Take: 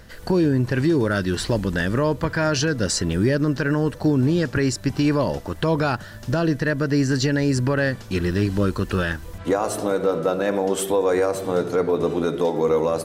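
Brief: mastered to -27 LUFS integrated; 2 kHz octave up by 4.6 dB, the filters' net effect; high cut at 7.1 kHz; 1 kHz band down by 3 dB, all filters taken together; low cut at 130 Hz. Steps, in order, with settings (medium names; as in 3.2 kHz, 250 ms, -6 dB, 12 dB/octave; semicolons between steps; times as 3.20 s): high-pass 130 Hz; low-pass 7.1 kHz; peaking EQ 1 kHz -7.5 dB; peaking EQ 2 kHz +9 dB; trim -4.5 dB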